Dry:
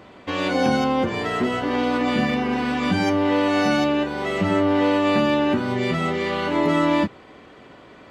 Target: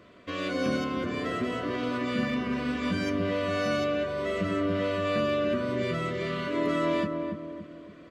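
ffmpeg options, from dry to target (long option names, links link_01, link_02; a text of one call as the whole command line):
ffmpeg -i in.wav -filter_complex "[0:a]asuperstop=centerf=840:order=8:qfactor=3.4,asplit=2[link_01][link_02];[link_02]adelay=284,lowpass=frequency=830:poles=1,volume=-3.5dB,asplit=2[link_03][link_04];[link_04]adelay=284,lowpass=frequency=830:poles=1,volume=0.5,asplit=2[link_05][link_06];[link_06]adelay=284,lowpass=frequency=830:poles=1,volume=0.5,asplit=2[link_07][link_08];[link_08]adelay=284,lowpass=frequency=830:poles=1,volume=0.5,asplit=2[link_09][link_10];[link_10]adelay=284,lowpass=frequency=830:poles=1,volume=0.5,asplit=2[link_11][link_12];[link_12]adelay=284,lowpass=frequency=830:poles=1,volume=0.5,asplit=2[link_13][link_14];[link_14]adelay=284,lowpass=frequency=830:poles=1,volume=0.5[link_15];[link_03][link_05][link_07][link_09][link_11][link_13][link_15]amix=inputs=7:normalize=0[link_16];[link_01][link_16]amix=inputs=2:normalize=0,volume=-8dB" out.wav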